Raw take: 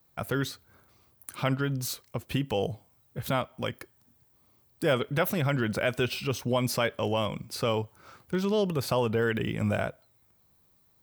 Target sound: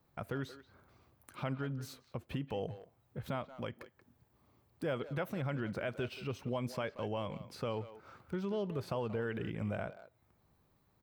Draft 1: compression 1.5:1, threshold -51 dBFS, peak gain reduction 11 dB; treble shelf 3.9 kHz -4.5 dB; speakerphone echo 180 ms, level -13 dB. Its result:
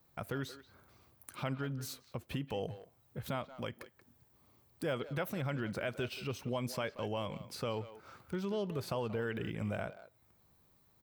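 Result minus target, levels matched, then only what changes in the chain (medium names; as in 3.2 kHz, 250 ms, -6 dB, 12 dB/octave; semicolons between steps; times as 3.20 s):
8 kHz band +7.0 dB
change: treble shelf 3.9 kHz -14 dB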